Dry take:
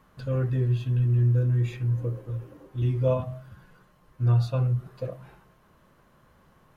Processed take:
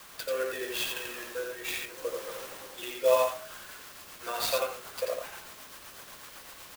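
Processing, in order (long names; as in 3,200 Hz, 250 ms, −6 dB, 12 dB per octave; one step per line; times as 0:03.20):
high-pass filter 470 Hz 24 dB per octave
spectral tilt +4 dB per octave
in parallel at −4.5 dB: bit-depth reduction 8 bits, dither triangular
on the sum: rotating-speaker cabinet horn 0.75 Hz, later 8 Hz, at 0:02.99
on a send: single-tap delay 87 ms −3.5 dB
on the sum: converter with an unsteady clock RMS 0.032 ms
level +6.5 dB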